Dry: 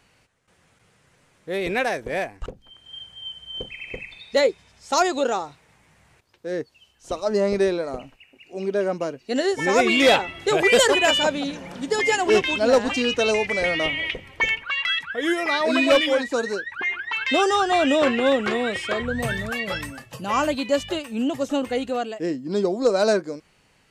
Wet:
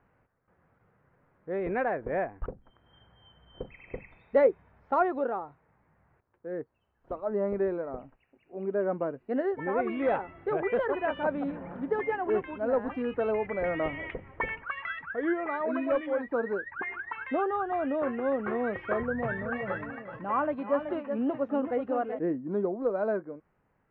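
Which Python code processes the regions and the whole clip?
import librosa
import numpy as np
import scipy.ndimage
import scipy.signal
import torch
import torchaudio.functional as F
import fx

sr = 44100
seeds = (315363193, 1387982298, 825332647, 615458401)

y = fx.chain(x, sr, fx.highpass(hz=220.0, slope=6),
    fx.echo_single(ms=377, db=-9.0), at=(19.03, 22.19))
y = scipy.signal.sosfilt(scipy.signal.butter(4, 1600.0, 'lowpass', fs=sr, output='sos'), y)
y = fx.rider(y, sr, range_db=4, speed_s=0.5)
y = y * librosa.db_to_amplitude(-6.5)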